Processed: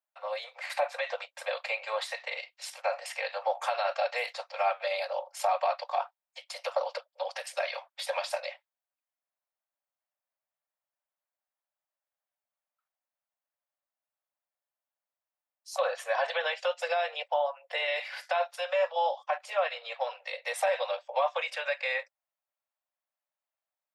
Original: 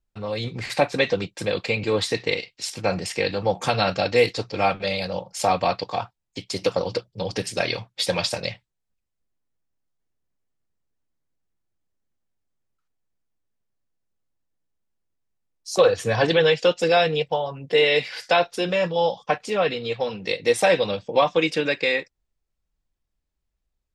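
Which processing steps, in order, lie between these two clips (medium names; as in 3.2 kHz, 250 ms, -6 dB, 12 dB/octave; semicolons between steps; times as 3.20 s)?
steep high-pass 550 Hz 96 dB/octave; peak limiter -16.5 dBFS, peak gain reduction 10 dB; peaking EQ 5.8 kHz -12 dB 2.1 oct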